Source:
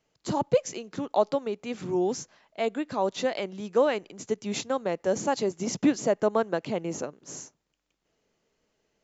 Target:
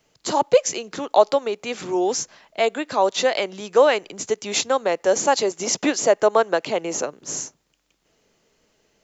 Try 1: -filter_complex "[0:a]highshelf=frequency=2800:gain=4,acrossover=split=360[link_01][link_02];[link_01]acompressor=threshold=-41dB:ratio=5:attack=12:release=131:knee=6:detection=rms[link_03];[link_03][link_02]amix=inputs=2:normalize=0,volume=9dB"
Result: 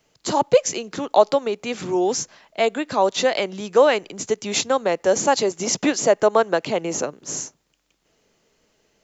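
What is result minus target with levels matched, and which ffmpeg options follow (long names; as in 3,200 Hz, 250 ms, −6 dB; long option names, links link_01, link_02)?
downward compressor: peak gain reduction −7 dB
-filter_complex "[0:a]highshelf=frequency=2800:gain=4,acrossover=split=360[link_01][link_02];[link_01]acompressor=threshold=-50dB:ratio=5:attack=12:release=131:knee=6:detection=rms[link_03];[link_03][link_02]amix=inputs=2:normalize=0,volume=9dB"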